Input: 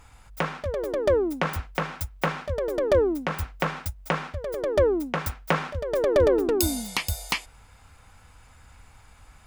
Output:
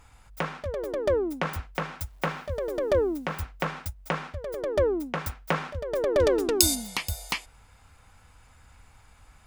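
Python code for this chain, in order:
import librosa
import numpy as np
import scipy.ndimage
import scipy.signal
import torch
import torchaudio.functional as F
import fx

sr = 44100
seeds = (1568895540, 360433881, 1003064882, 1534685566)

y = fx.quant_dither(x, sr, seeds[0], bits=10, dither='none', at=(2.0, 3.38))
y = fx.peak_eq(y, sr, hz=6100.0, db=11.5, octaves=2.8, at=(6.18, 6.74), fade=0.02)
y = y * librosa.db_to_amplitude(-3.0)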